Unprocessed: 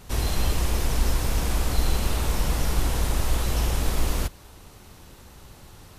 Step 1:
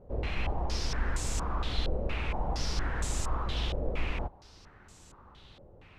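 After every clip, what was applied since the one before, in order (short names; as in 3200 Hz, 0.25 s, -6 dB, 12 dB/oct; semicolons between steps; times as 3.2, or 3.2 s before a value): stepped low-pass 4.3 Hz 550–7500 Hz; gain -8.5 dB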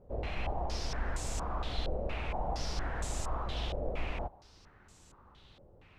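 dynamic EQ 680 Hz, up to +7 dB, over -54 dBFS, Q 1.9; gain -4.5 dB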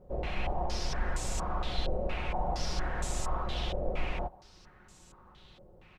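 comb 5.5 ms, depth 39%; gain +2 dB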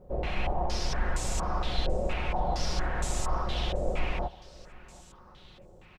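feedback echo 0.733 s, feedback 26%, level -22 dB; gain +3 dB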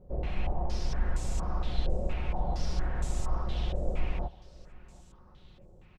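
low shelf 350 Hz +10 dB; gain -9 dB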